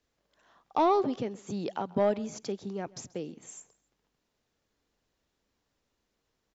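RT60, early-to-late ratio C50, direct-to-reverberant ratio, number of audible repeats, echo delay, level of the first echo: no reverb, no reverb, no reverb, 2, 133 ms, -22.5 dB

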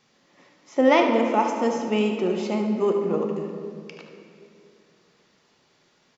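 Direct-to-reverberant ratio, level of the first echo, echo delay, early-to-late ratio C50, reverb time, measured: 2.0 dB, -10.0 dB, 75 ms, 3.5 dB, 2.5 s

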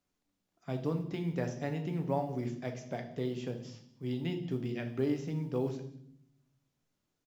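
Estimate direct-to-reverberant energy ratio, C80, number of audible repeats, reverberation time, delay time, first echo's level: 4.5 dB, 13.0 dB, 1, 0.65 s, 188 ms, -21.5 dB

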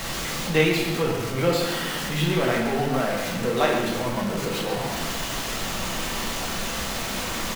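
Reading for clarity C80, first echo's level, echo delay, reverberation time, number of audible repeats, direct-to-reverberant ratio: 4.5 dB, -7.5 dB, 134 ms, 0.80 s, 1, -3.0 dB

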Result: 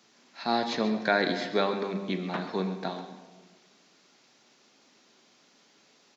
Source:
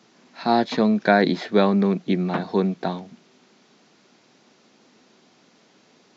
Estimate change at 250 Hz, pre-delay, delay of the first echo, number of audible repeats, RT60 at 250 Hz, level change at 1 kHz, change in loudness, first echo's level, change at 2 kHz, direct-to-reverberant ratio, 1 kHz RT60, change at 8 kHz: -10.5 dB, 4 ms, 134 ms, 1, 1.7 s, -7.0 dB, -8.0 dB, -12.5 dB, -4.0 dB, 5.5 dB, 1.2 s, no reading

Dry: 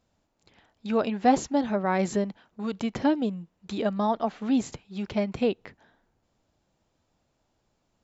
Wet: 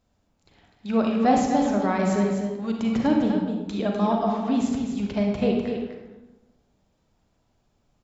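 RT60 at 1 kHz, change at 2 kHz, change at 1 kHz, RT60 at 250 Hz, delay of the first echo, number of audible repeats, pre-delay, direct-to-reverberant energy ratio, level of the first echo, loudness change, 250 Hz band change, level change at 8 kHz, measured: 0.95 s, +1.5 dB, +2.5 dB, 1.3 s, 251 ms, 1, 36 ms, 0.0 dB, -7.0 dB, +3.5 dB, +5.0 dB, no reading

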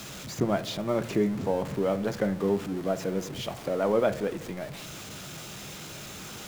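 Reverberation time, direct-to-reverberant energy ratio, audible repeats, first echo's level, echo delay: 0.75 s, 11.0 dB, no echo, no echo, no echo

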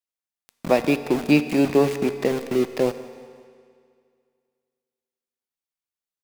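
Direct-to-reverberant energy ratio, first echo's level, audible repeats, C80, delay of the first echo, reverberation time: 10.0 dB, -20.0 dB, 2, 12.0 dB, 180 ms, 2.1 s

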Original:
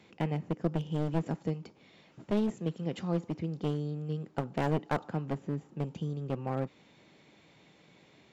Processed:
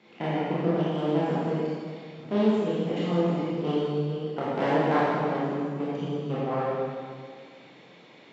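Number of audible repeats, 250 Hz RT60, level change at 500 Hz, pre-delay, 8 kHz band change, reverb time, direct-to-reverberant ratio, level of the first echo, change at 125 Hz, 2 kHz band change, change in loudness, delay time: no echo, 1.9 s, +10.0 dB, 21 ms, no reading, 1.9 s, -9.5 dB, no echo, +2.0 dB, +9.5 dB, +7.0 dB, no echo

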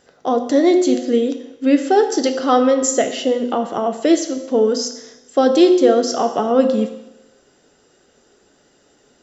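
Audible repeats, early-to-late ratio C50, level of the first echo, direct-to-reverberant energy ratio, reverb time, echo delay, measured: no echo, 9.5 dB, no echo, 6.0 dB, 0.90 s, no echo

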